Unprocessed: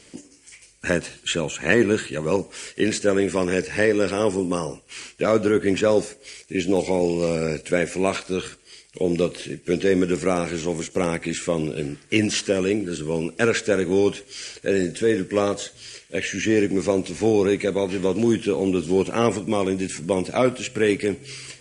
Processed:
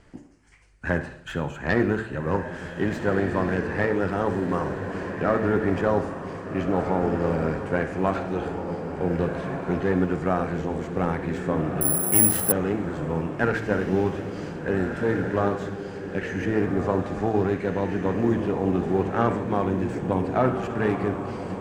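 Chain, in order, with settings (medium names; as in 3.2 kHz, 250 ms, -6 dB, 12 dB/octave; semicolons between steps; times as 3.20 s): self-modulated delay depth 0.12 ms; RIAA curve playback; echo that smears into a reverb 1605 ms, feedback 41%, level -6 dB; on a send at -12 dB: reverberation RT60 0.65 s, pre-delay 48 ms; 11.81–12.52 s: on the sum: careless resampling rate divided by 4×, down none, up zero stuff; de-hum 111.2 Hz, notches 37; in parallel at -7.5 dB: companded quantiser 8-bit; on the sum: high-order bell 1.1 kHz +10.5 dB; trim -12.5 dB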